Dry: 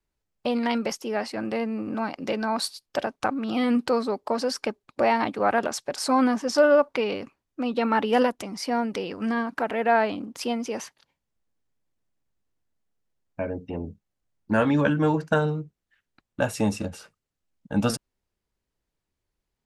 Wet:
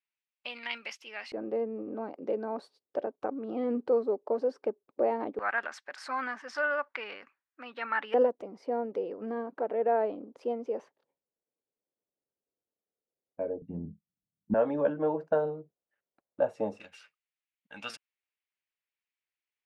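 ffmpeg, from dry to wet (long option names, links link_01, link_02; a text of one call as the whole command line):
ffmpeg -i in.wav -af "asetnsamples=nb_out_samples=441:pad=0,asendcmd='1.32 bandpass f 440;5.39 bandpass f 1700;8.14 bandpass f 480;13.62 bandpass f 180;14.54 bandpass f 570;16.8 bandpass f 2400',bandpass=frequency=2500:width_type=q:width=2.4:csg=0" out.wav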